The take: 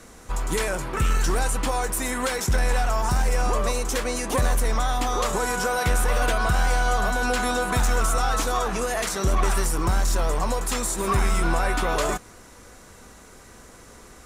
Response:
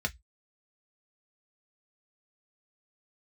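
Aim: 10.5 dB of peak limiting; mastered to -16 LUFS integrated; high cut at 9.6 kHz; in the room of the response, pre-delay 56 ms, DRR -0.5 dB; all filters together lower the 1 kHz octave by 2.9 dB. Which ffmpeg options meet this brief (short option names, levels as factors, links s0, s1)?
-filter_complex "[0:a]lowpass=9600,equalizer=f=1000:t=o:g=-4,alimiter=limit=0.0708:level=0:latency=1,asplit=2[s0][s1];[1:a]atrim=start_sample=2205,adelay=56[s2];[s1][s2]afir=irnorm=-1:irlink=0,volume=0.562[s3];[s0][s3]amix=inputs=2:normalize=0,volume=4.22"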